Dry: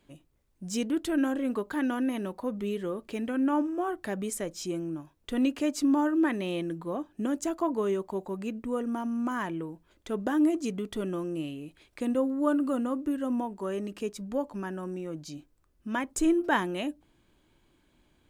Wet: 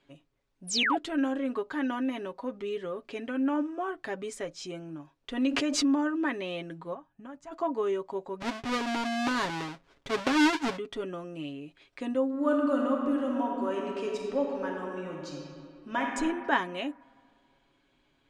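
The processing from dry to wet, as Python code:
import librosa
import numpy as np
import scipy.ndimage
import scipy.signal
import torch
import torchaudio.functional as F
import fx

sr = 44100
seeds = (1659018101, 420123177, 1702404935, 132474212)

y = fx.spec_paint(x, sr, seeds[0], shape='fall', start_s=0.67, length_s=0.3, low_hz=610.0, high_hz=11000.0, level_db=-27.0)
y = fx.pre_swell(y, sr, db_per_s=31.0, at=(5.42, 5.98))
y = fx.curve_eq(y, sr, hz=(170.0, 340.0, 920.0, 3500.0), db=(0, -21, -5, -16), at=(6.93, 7.51), fade=0.02)
y = fx.halfwave_hold(y, sr, at=(8.4, 10.76), fade=0.02)
y = fx.reverb_throw(y, sr, start_s=12.27, length_s=3.76, rt60_s=2.3, drr_db=-0.5)
y = scipy.signal.sosfilt(scipy.signal.butter(2, 5000.0, 'lowpass', fs=sr, output='sos'), y)
y = fx.low_shelf(y, sr, hz=300.0, db=-9.0)
y = y + 0.56 * np.pad(y, (int(7.3 * sr / 1000.0), 0))[:len(y)]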